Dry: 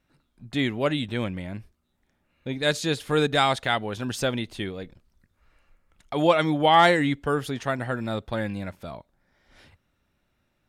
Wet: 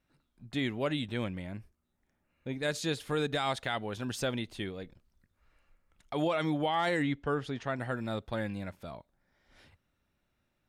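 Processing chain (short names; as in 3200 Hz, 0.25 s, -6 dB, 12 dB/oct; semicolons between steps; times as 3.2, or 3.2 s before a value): 1.52–2.73 bell 3700 Hz -5.5 dB 0.68 oct; limiter -15 dBFS, peak gain reduction 8 dB; 7.02–7.76 air absorption 90 m; gain -6 dB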